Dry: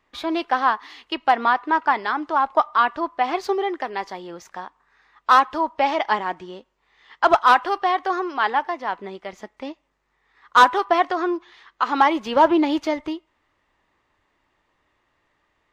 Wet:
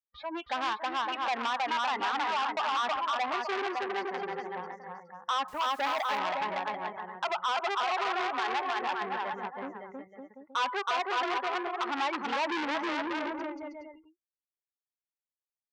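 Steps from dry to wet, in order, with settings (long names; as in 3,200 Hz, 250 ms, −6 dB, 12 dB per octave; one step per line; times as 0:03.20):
gate on every frequency bin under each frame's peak −20 dB strong
noise reduction from a noise print of the clip's start 21 dB
noise gate with hold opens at −44 dBFS
low-pass that shuts in the quiet parts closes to 2,100 Hz, open at −13.5 dBFS
bouncing-ball delay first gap 320 ms, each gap 0.75×, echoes 5
brickwall limiter −13.5 dBFS, peak gain reduction 10.5 dB
0:05.48–0:06.18: bit-depth reduction 8 bits, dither none
saturating transformer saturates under 1,900 Hz
level −5 dB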